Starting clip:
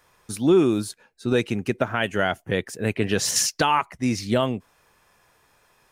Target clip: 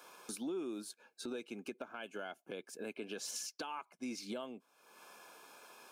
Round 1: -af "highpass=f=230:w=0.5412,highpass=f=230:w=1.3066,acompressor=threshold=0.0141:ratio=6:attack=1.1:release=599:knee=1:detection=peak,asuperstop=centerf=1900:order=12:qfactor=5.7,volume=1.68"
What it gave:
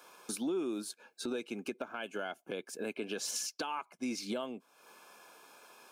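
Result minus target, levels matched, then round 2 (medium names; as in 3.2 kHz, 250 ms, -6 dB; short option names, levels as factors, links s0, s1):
compression: peak gain reduction -5.5 dB
-af "highpass=f=230:w=0.5412,highpass=f=230:w=1.3066,acompressor=threshold=0.00668:ratio=6:attack=1.1:release=599:knee=1:detection=peak,asuperstop=centerf=1900:order=12:qfactor=5.7,volume=1.68"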